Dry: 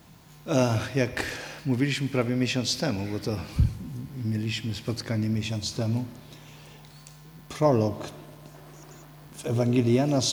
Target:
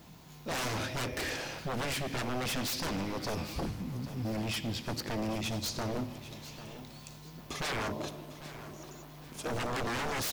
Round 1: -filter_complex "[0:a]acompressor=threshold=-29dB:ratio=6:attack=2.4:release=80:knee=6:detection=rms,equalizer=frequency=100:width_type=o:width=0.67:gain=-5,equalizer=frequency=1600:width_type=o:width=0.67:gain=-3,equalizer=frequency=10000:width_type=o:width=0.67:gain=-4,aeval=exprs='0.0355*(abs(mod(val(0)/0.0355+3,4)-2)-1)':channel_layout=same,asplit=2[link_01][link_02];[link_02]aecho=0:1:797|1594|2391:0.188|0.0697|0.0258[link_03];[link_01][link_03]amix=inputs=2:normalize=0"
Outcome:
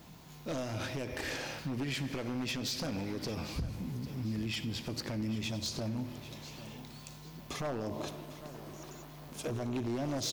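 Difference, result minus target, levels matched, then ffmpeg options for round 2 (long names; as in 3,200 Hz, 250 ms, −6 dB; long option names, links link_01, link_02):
downward compressor: peak gain reduction +14 dB
-filter_complex "[0:a]equalizer=frequency=100:width_type=o:width=0.67:gain=-5,equalizer=frequency=1600:width_type=o:width=0.67:gain=-3,equalizer=frequency=10000:width_type=o:width=0.67:gain=-4,aeval=exprs='0.0355*(abs(mod(val(0)/0.0355+3,4)-2)-1)':channel_layout=same,asplit=2[link_01][link_02];[link_02]aecho=0:1:797|1594|2391:0.188|0.0697|0.0258[link_03];[link_01][link_03]amix=inputs=2:normalize=0"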